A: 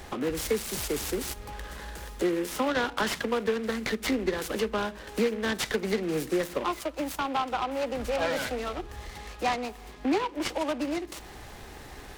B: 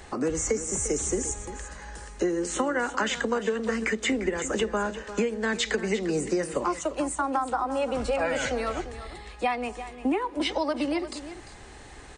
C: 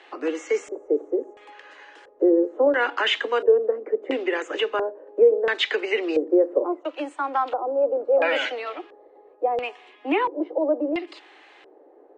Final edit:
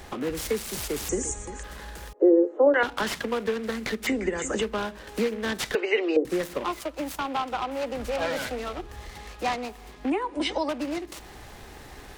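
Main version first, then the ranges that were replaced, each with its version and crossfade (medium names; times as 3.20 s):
A
1.09–1.63 s: from B
2.13–2.83 s: from C
4.07–4.62 s: from B
5.75–6.25 s: from C
10.10–10.69 s: from B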